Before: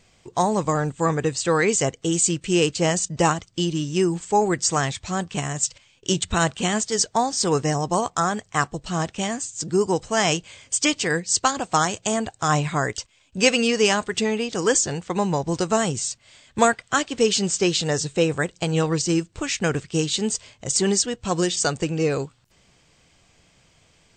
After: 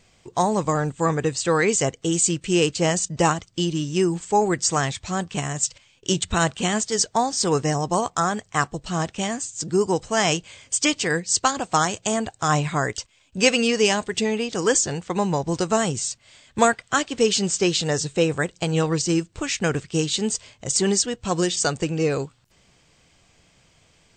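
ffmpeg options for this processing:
-filter_complex "[0:a]asettb=1/sr,asplit=3[a][b][c];[a]atrim=end=13.804[d];[b]atrim=start=13.8:end=14.34,asetpts=PTS-STARTPTS,afade=t=in:d=0.004:c=qsin,afade=t=out:st=0.536:d=0.004:c=qsin,equalizer=f=1.3k:t=o:w=0.56:g=-6[e];[c]atrim=start=14.336[f];[d][e]acrossfade=d=0.004:c1=hsin:c2=qsin[g];[g][f]acrossfade=d=0.004:c1=qsin:c2=hsin"

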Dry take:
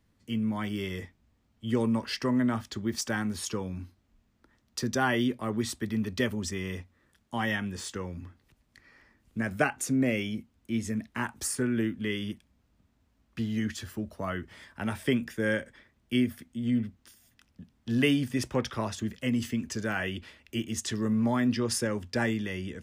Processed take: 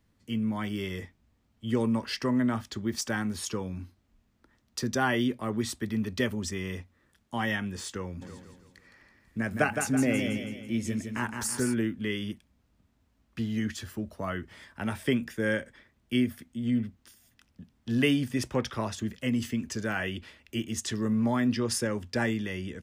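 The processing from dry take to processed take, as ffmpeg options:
-filter_complex "[0:a]asplit=3[a][b][c];[a]afade=t=out:st=8.21:d=0.02[d];[b]aecho=1:1:164|328|492|656|820|984:0.501|0.231|0.106|0.0488|0.0224|0.0103,afade=t=in:st=8.21:d=0.02,afade=t=out:st=11.73:d=0.02[e];[c]afade=t=in:st=11.73:d=0.02[f];[d][e][f]amix=inputs=3:normalize=0"

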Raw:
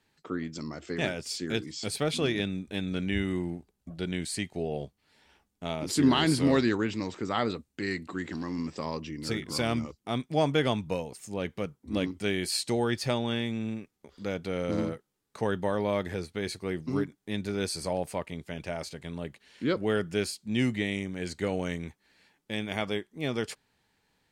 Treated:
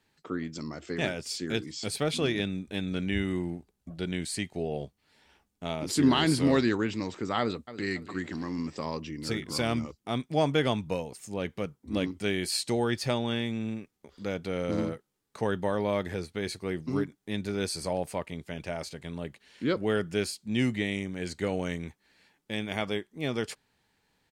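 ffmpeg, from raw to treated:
-filter_complex "[0:a]asplit=2[a][b];[b]afade=t=in:st=7.39:d=0.01,afade=t=out:st=7.92:d=0.01,aecho=0:1:280|560|840:0.188365|0.0659277|0.0230747[c];[a][c]amix=inputs=2:normalize=0"

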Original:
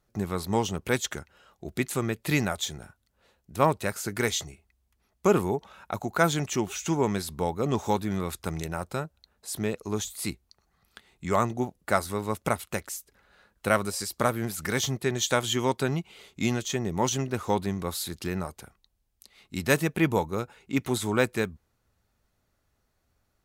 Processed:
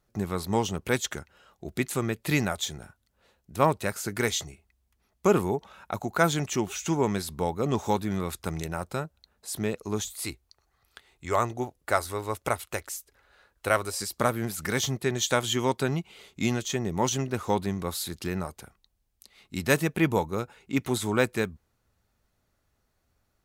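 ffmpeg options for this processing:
-filter_complex "[0:a]asettb=1/sr,asplit=3[a][b][c];[a]atrim=end=10.134[d];[b]atrim=start=10.13:end=14,asetpts=PTS-STARTPTS,afade=t=in:d=0.004:c=qsin,afade=t=out:st=3.866:d=0.004:c=qsin,equalizer=f=190:t=o:w=0.63:g=-13[e];[c]atrim=start=13.996[f];[d][e]acrossfade=d=0.004:c1=hsin:c2=qsin[g];[g][f]acrossfade=d=0.004:c1=qsin:c2=hsin"

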